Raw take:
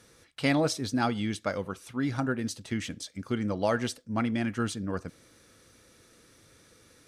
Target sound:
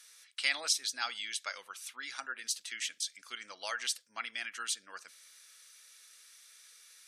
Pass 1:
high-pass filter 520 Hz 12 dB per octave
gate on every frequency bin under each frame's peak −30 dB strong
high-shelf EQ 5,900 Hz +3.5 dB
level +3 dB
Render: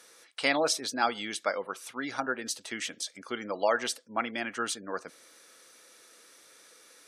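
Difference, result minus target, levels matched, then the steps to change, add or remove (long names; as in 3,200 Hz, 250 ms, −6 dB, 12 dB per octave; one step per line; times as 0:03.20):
500 Hz band +16.0 dB
change: high-pass filter 2,100 Hz 12 dB per octave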